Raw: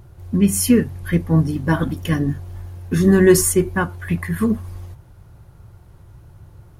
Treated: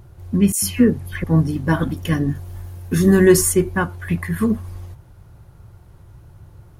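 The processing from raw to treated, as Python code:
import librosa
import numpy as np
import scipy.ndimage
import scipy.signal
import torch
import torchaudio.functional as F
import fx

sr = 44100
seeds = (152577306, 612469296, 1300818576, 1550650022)

y = fx.dispersion(x, sr, late='lows', ms=103.0, hz=2100.0, at=(0.52, 1.24))
y = fx.high_shelf(y, sr, hz=7600.0, db=8.5, at=(2.35, 3.28))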